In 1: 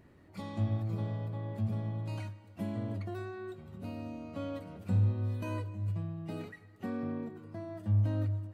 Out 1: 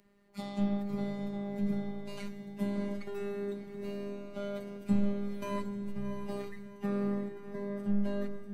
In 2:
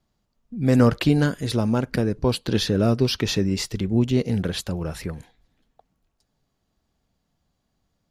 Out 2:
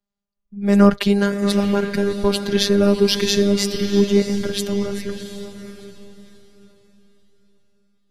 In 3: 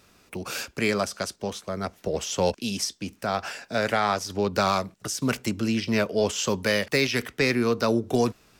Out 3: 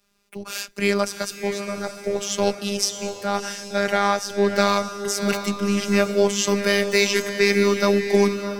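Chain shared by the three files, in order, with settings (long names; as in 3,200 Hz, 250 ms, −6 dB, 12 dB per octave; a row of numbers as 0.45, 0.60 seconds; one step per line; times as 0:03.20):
phases set to zero 201 Hz
feedback delay with all-pass diffusion 710 ms, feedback 41%, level −6.5 dB
multiband upward and downward expander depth 40%
level +5.5 dB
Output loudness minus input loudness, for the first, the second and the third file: −0.5, +4.0, +4.5 LU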